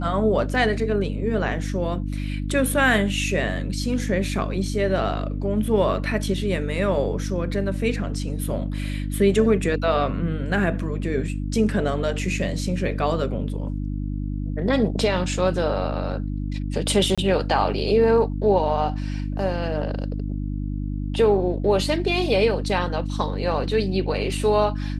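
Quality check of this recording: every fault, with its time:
hum 50 Hz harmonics 6 -27 dBFS
17.15–17.18 gap 26 ms

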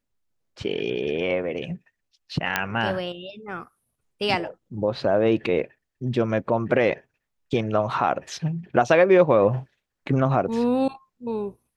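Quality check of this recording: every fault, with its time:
2.56 pop -6 dBFS

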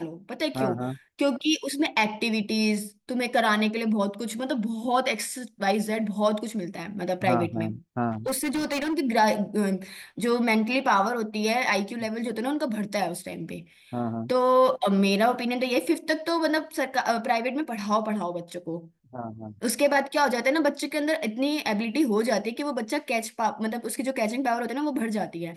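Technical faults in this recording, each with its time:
8.11–8.99 clipped -23.5 dBFS

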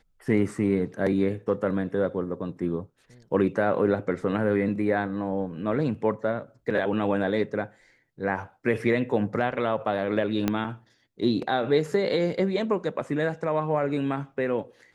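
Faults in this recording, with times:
10.48 pop -10 dBFS

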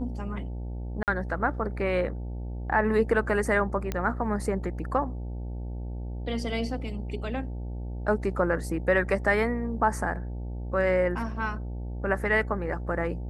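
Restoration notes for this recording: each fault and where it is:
buzz 60 Hz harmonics 15 -34 dBFS
1.03–1.08 gap 48 ms
3.92 pop -15 dBFS

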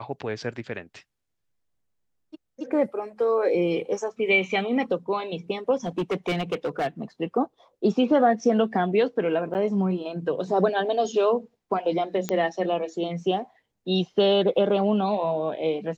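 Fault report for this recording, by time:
5.86–6.87 clipped -21.5 dBFS
9.54–9.55 gap 9.3 ms
12.29 pop -12 dBFS

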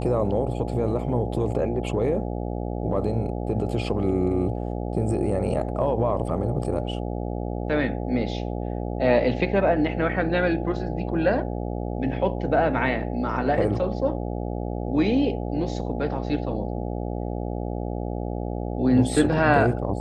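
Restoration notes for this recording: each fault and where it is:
buzz 60 Hz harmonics 14 -29 dBFS

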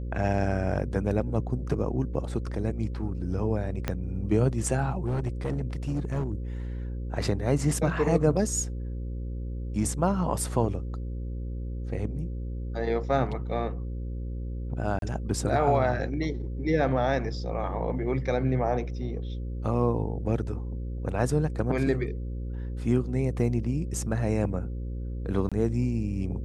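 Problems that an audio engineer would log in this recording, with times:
buzz 60 Hz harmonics 9 -33 dBFS
3.88 pop -13 dBFS
5.06–6.32 clipped -24 dBFS
14.99–15.02 gap 32 ms
25.49–25.52 gap 26 ms

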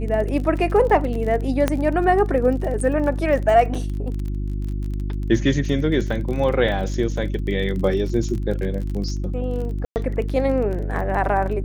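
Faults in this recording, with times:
crackle 24/s -28 dBFS
hum 50 Hz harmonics 7 -25 dBFS
1.68 pop -6 dBFS
9.85–9.96 gap 0.109 s

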